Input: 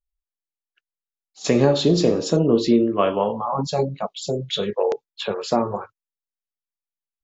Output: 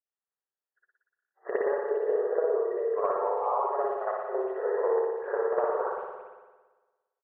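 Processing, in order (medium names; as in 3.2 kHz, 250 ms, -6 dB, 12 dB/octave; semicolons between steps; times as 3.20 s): 3.63–5.80 s: partial rectifier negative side -7 dB; FFT band-pass 360–2000 Hz; compression 16:1, threshold -26 dBFS, peak gain reduction 13 dB; speakerphone echo 390 ms, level -20 dB; spring tank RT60 1.3 s, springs 57 ms, chirp 60 ms, DRR -9.5 dB; trim -6 dB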